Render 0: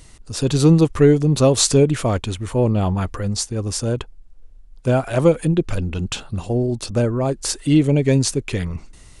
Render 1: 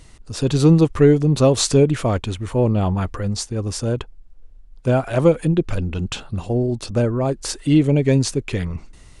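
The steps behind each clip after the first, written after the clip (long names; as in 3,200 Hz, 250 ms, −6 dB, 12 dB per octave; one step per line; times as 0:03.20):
high-shelf EQ 6,200 Hz −7 dB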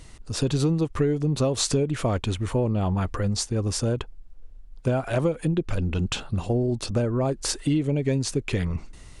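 downward compressor 6 to 1, threshold −20 dBFS, peak gain reduction 11.5 dB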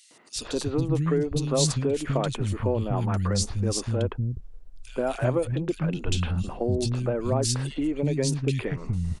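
three-band delay without the direct sound highs, mids, lows 110/360 ms, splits 230/2,500 Hz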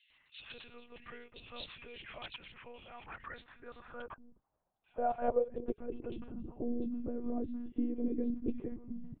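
band-pass filter sweep 2,600 Hz → 270 Hz, 0:02.78–0:06.62
high-pass filter 55 Hz 12 dB per octave
one-pitch LPC vocoder at 8 kHz 240 Hz
level −3 dB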